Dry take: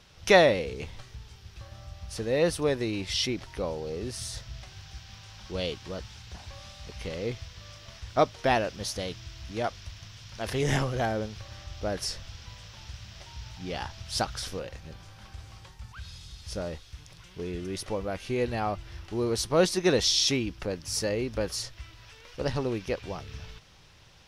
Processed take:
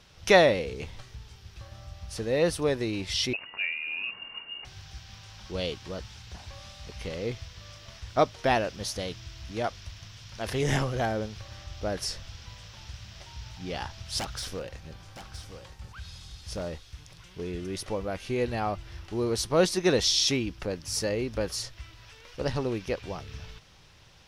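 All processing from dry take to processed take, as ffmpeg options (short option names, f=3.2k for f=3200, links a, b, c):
-filter_complex "[0:a]asettb=1/sr,asplit=3[a][b][c];[a]atrim=end=3.334[d];[b]atrim=start=3.33:end=4.65,asetpts=PTS-STARTPTS,afade=t=in:d=0.004:c=qsin,afade=t=out:st=1.316:d=0.004:c=qsin,lowpass=f=2.5k:t=q:w=0.5098,lowpass=f=2.5k:t=q:w=0.6013,lowpass=f=2.5k:t=q:w=0.9,lowpass=f=2.5k:t=q:w=2.563,afreqshift=-2900,lowshelf=f=480:g=4.5[e];[c]atrim=start=4.646[f];[d][e]acrossfade=d=0.004:c1=hsin:c2=qsin[g];[g][f]acrossfade=d=0.004:c1=qsin:c2=hsin,asettb=1/sr,asplit=3[h][i][j];[h]atrim=end=14.194[k];[i]atrim=start=14.19:end=16.75,asetpts=PTS-STARTPTS,afade=t=in:d=0.004:c=qsin,afade=t=out:st=2.556:d=0.004:c=qsin,aeval=exprs='0.0447*(abs(mod(val(0)/0.0447+3,4)-2)-1)':c=same,aecho=1:1:968:0.282,atrim=end_sample=112896[l];[j]atrim=start=16.746[m];[k][l]acrossfade=d=0.004:c1=hsin:c2=qsin[n];[n][m]acrossfade=d=0.004:c1=qsin:c2=hsin"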